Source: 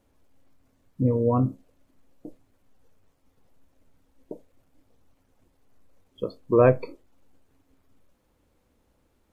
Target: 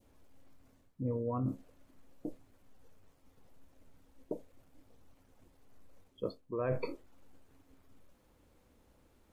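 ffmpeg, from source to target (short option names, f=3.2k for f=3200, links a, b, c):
-af "adynamicequalizer=threshold=0.0224:dfrequency=1400:dqfactor=1.1:tfrequency=1400:tqfactor=1.1:attack=5:release=100:ratio=0.375:range=2:mode=boostabove:tftype=bell,areverse,acompressor=threshold=-33dB:ratio=8,areverse,volume=1dB"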